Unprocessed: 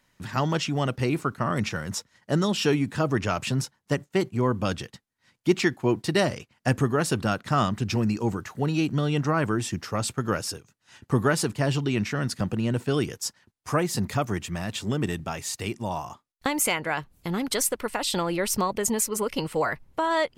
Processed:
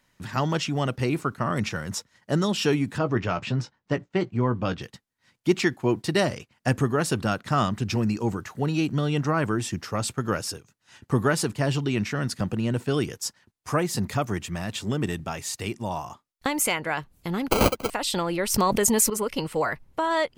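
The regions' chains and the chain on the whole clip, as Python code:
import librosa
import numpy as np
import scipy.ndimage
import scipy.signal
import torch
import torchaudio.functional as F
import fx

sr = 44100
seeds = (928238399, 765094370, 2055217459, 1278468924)

y = fx.chain(x, sr, fx.air_absorb(metres=150.0),
    fx.doubler(ms=17.0, db=-10.5), at=(2.98, 4.82))
y = fx.chain(y, sr, fx.bass_treble(bass_db=-7, treble_db=8),
    fx.sample_hold(seeds[0], rate_hz=1800.0, jitter_pct=0),
    fx.band_squash(depth_pct=70), at=(17.5, 17.9))
y = fx.chain(y, sr, fx.high_shelf(hz=5400.0, db=5.5),
    fx.env_flatten(amount_pct=70), at=(18.54, 19.1))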